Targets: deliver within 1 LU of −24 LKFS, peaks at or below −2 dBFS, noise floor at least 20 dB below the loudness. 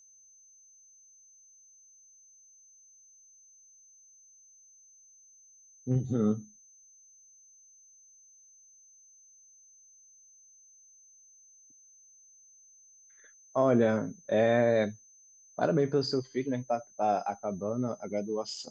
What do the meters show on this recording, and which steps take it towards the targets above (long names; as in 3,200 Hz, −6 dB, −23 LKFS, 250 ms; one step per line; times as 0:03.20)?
interfering tone 6,200 Hz; level of the tone −56 dBFS; integrated loudness −29.5 LKFS; sample peak −13.0 dBFS; target loudness −24.0 LKFS
→ notch filter 6,200 Hz, Q 30
level +5.5 dB